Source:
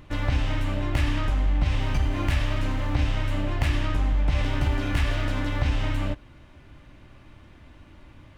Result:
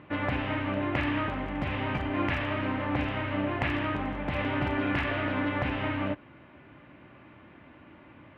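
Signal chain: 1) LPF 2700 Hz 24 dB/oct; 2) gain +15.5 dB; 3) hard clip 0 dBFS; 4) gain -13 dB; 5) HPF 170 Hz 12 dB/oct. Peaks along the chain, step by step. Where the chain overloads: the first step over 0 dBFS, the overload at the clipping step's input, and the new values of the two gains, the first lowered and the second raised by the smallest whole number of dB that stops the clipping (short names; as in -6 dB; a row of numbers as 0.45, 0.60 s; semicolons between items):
-12.5, +3.0, 0.0, -13.0, -13.5 dBFS; step 2, 3.0 dB; step 2 +12.5 dB, step 4 -10 dB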